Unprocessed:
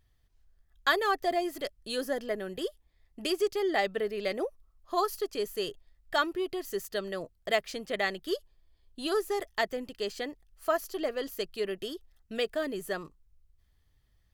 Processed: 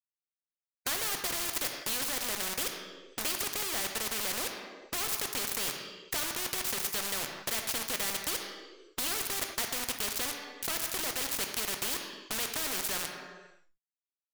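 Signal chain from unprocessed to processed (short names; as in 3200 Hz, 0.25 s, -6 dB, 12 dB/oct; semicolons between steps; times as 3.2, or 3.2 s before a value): 3.43–4.46 HPF 140 Hz 24 dB/oct; in parallel at +3 dB: compressor 10:1, threshold -39 dBFS, peak gain reduction 19 dB; on the sum: sample gate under -33.5 dBFS; vibrato 2 Hz 45 cents; soft clip -25.5 dBFS, distortion -11 dB; on a send at -6 dB: reverb RT60 1.0 s, pre-delay 3 ms; on the sum: spectral compressor 4:1; gain +4.5 dB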